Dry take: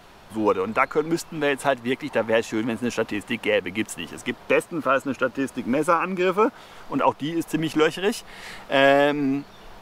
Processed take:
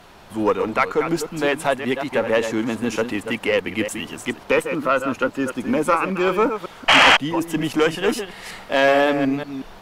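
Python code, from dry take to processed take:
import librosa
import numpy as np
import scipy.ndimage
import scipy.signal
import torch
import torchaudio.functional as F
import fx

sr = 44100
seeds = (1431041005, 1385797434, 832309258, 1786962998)

y = fx.reverse_delay(x, sr, ms=185, wet_db=-9)
y = fx.spec_paint(y, sr, seeds[0], shape='noise', start_s=6.88, length_s=0.29, low_hz=550.0, high_hz=3300.0, level_db=-12.0)
y = fx.tube_stage(y, sr, drive_db=9.0, bias=0.3)
y = y * librosa.db_to_amplitude(3.0)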